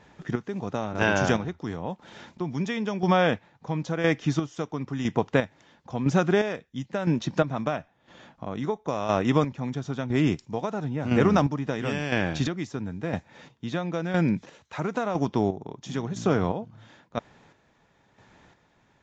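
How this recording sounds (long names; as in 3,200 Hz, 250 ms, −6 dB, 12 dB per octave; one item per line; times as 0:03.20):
chopped level 0.99 Hz, depth 60%, duty 35%
Ogg Vorbis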